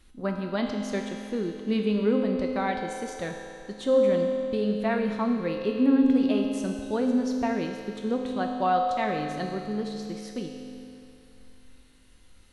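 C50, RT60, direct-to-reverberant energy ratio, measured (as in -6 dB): 3.0 dB, 2.7 s, 1.0 dB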